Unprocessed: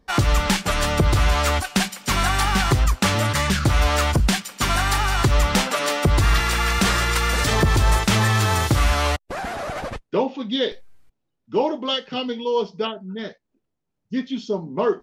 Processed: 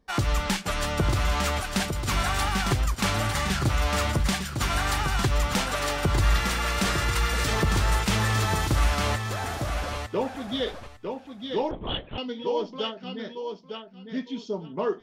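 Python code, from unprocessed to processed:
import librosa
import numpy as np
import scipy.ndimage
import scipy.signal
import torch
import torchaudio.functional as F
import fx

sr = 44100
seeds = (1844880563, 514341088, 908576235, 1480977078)

y = fx.echo_feedback(x, sr, ms=904, feedback_pct=17, wet_db=-6)
y = fx.lpc_vocoder(y, sr, seeds[0], excitation='whisper', order=8, at=(11.71, 12.18))
y = y * 10.0 ** (-6.5 / 20.0)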